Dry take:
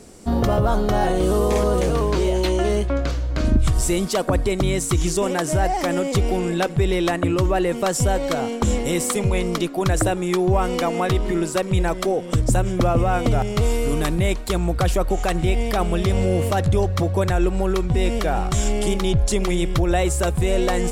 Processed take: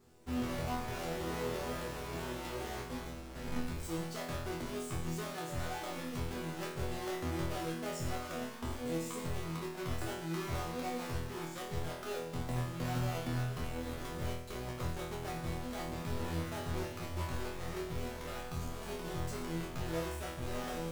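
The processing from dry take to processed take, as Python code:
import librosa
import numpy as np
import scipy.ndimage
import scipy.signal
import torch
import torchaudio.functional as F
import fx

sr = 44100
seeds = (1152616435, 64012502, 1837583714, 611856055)

y = fx.halfwave_hold(x, sr)
y = fx.wow_flutter(y, sr, seeds[0], rate_hz=2.1, depth_cents=140.0)
y = fx.resonator_bank(y, sr, root=40, chord='fifth', decay_s=0.71)
y = y * 10.0 ** (-7.5 / 20.0)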